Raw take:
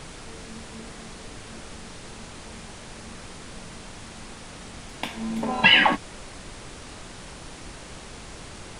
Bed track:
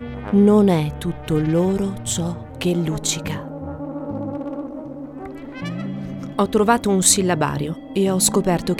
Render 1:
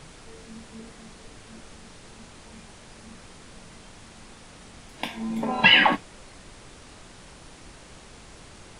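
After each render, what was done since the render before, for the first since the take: noise print and reduce 6 dB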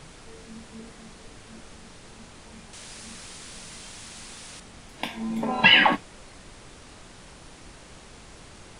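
2.73–4.60 s: treble shelf 2.2 kHz +11 dB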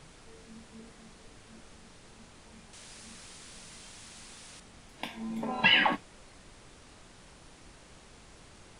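trim -7 dB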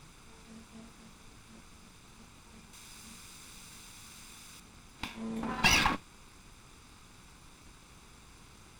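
comb filter that takes the minimum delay 0.81 ms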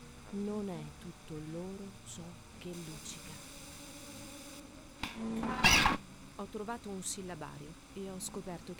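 add bed track -25 dB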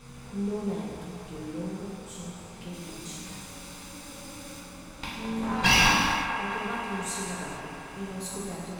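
on a send: feedback echo behind a band-pass 216 ms, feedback 79%, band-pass 1 kHz, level -7 dB; on the sum: gated-style reverb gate 490 ms falling, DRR -5 dB

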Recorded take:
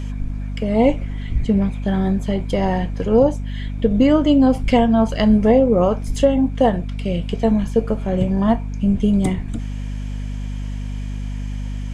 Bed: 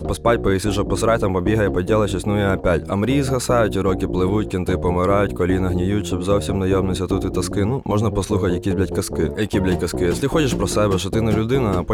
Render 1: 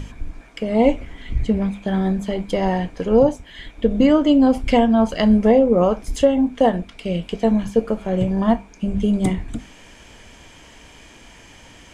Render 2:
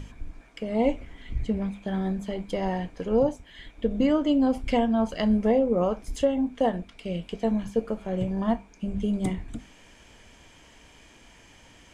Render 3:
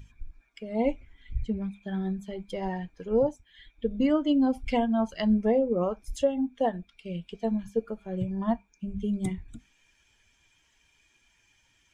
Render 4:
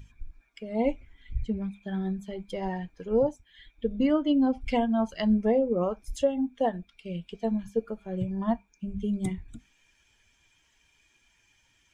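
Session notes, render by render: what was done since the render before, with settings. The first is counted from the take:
hum notches 50/100/150/200/250 Hz
trim -8 dB
expander on every frequency bin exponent 1.5
3.95–4.60 s: low-pass 6.8 kHz -> 3.6 kHz

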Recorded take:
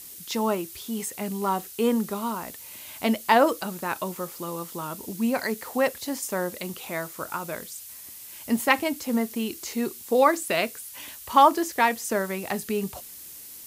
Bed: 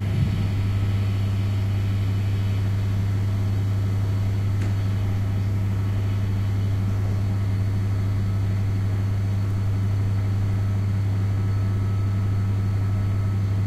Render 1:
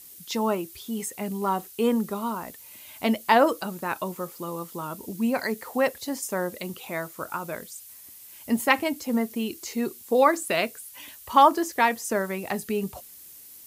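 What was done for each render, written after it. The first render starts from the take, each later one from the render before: noise reduction 6 dB, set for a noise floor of -43 dBFS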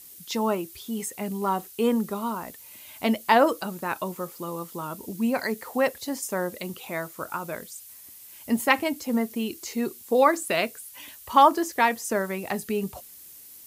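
no audible change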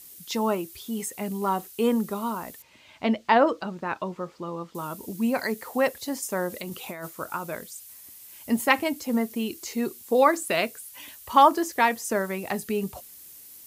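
2.62–4.75 s: distance through air 150 m; 6.50–7.10 s: compressor with a negative ratio -35 dBFS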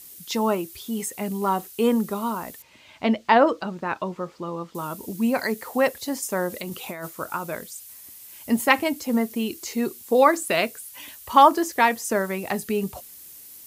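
trim +2.5 dB

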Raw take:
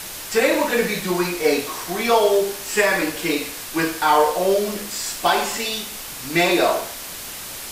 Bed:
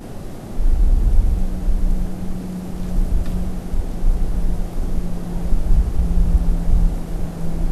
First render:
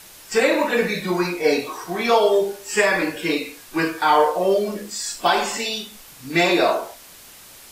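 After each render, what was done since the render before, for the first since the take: noise print and reduce 11 dB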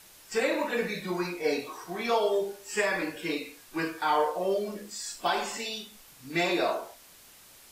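trim -9.5 dB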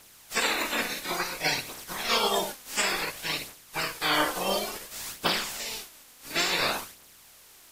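spectral peaks clipped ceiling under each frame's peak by 27 dB; phaser 0.57 Hz, delay 4.1 ms, feedback 38%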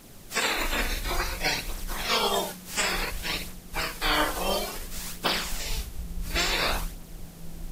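add bed -18 dB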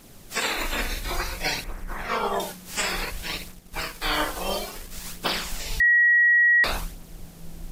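1.64–2.40 s: resonant high shelf 2.5 kHz -11 dB, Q 1.5; 3.25–5.05 s: companding laws mixed up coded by A; 5.80–6.64 s: bleep 1.91 kHz -14.5 dBFS

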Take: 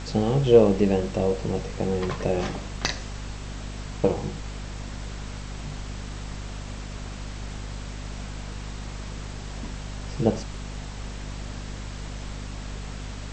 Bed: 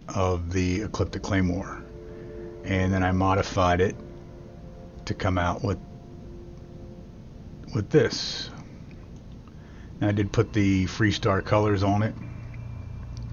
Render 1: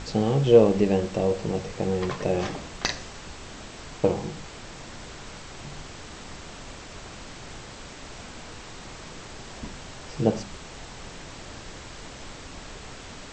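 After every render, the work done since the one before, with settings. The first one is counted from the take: de-hum 50 Hz, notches 5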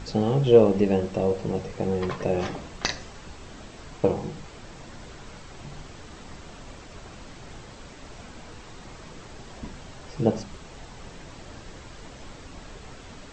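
noise reduction 6 dB, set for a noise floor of -42 dBFS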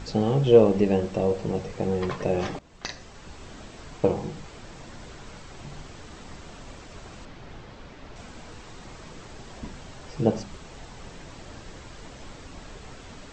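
2.59–3.42 s: fade in, from -17.5 dB; 7.25–8.16 s: distance through air 120 m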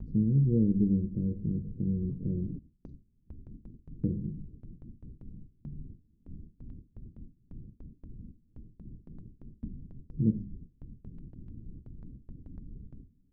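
inverse Chebyshev low-pass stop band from 690 Hz, stop band 50 dB; gate with hold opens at -36 dBFS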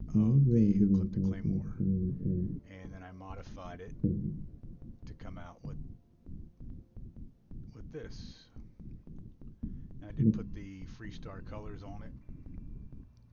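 add bed -25 dB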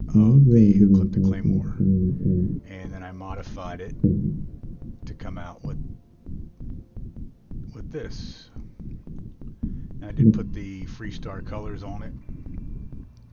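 trim +10.5 dB

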